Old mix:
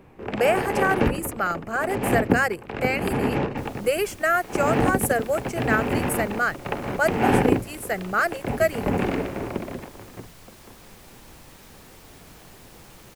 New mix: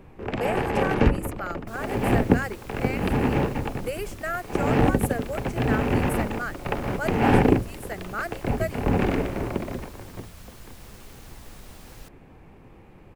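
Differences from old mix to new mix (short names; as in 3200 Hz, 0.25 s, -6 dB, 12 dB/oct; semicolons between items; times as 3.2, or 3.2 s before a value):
speech -9.0 dB; second sound: entry -1.90 s; master: add low shelf 80 Hz +10.5 dB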